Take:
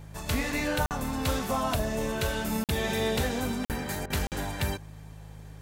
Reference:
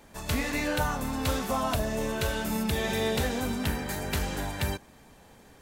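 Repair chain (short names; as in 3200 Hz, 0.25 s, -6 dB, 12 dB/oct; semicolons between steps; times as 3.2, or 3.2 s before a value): de-hum 52.3 Hz, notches 3; interpolate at 0.86/2.64/3.65/4.27, 48 ms; interpolate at 4.06, 40 ms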